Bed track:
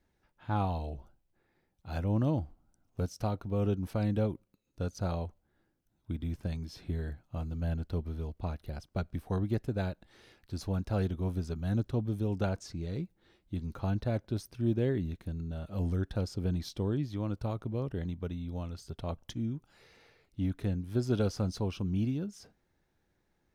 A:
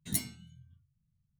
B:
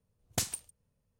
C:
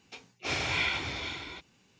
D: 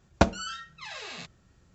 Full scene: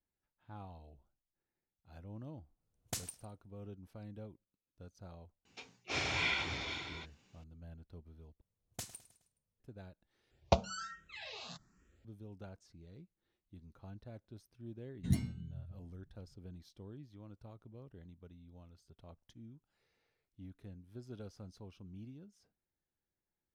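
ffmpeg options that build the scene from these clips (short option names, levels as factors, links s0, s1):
-filter_complex "[2:a]asplit=2[s0][s1];[0:a]volume=0.112[s2];[s0]aecho=1:1:104|208:0.0841|0.0236[s3];[s1]aecho=1:1:105|210|315|420:0.15|0.0718|0.0345|0.0165[s4];[4:a]asplit=2[s5][s6];[s6]afreqshift=1.2[s7];[s5][s7]amix=inputs=2:normalize=1[s8];[1:a]aemphasis=mode=reproduction:type=riaa[s9];[s2]asplit=3[s10][s11][s12];[s10]atrim=end=8.414[s13];[s4]atrim=end=1.19,asetpts=PTS-STARTPTS,volume=0.224[s14];[s11]atrim=start=9.596:end=10.314[s15];[s8]atrim=end=1.74,asetpts=PTS-STARTPTS,volume=0.562[s16];[s12]atrim=start=12.046[s17];[s3]atrim=end=1.19,asetpts=PTS-STARTPTS,volume=0.376,afade=t=in:d=0.1,afade=t=out:st=1.09:d=0.1,adelay=2550[s18];[3:a]atrim=end=1.99,asetpts=PTS-STARTPTS,volume=0.596,afade=t=in:d=0.004:c=hsin,afade=t=out:st=1.986:d=0.004:c=hsin,adelay=240345S[s19];[s9]atrim=end=1.39,asetpts=PTS-STARTPTS,volume=0.668,afade=t=in:d=0.004:c=hsin,afade=t=out:st=1.386:d=0.004:c=hsin,adelay=14980[s20];[s13][s14]acrossfade=d=0.004:c1=hsin:c2=hsin[s21];[s21][s15]acrossfade=d=0.004:c1=hsin:c2=hsin[s22];[s22][s16]acrossfade=d=0.004:c1=hsin:c2=hsin[s23];[s23][s17]acrossfade=d=0.004:c1=hsin:c2=hsin[s24];[s24][s18][s19][s20]amix=inputs=4:normalize=0"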